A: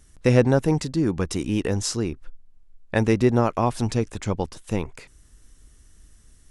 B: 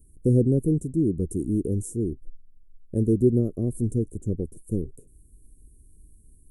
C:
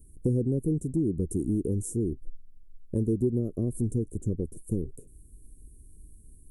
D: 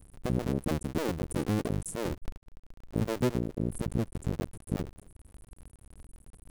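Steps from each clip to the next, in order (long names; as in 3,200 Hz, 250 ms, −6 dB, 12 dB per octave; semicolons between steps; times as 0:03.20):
elliptic band-stop filter 400–9,300 Hz, stop band 40 dB
downward compressor 3 to 1, threshold −27 dBFS, peak gain reduction 10 dB; level +2 dB
sub-harmonics by changed cycles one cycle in 2, muted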